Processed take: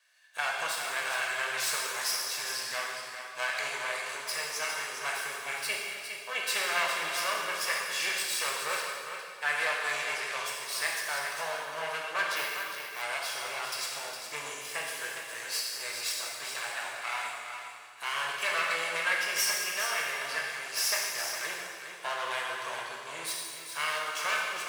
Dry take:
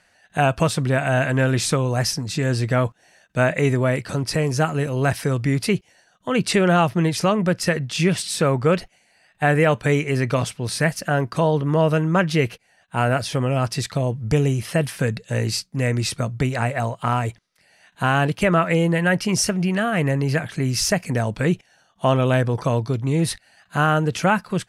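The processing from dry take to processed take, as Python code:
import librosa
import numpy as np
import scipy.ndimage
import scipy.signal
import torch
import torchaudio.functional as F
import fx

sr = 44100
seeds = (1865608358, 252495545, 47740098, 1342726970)

p1 = fx.lower_of_two(x, sr, delay_ms=1.8)
p2 = scipy.signal.sosfilt(scipy.signal.butter(2, 1300.0, 'highpass', fs=sr, output='sos'), p1)
p3 = p2 + fx.echo_single(p2, sr, ms=409, db=-8.5, dry=0)
p4 = fx.rev_plate(p3, sr, seeds[0], rt60_s=1.9, hf_ratio=0.95, predelay_ms=0, drr_db=-2.5)
p5 = fx.resample_bad(p4, sr, factor=3, down='none', up='hold', at=(12.36, 13.02))
y = p5 * librosa.db_to_amplitude(-7.0)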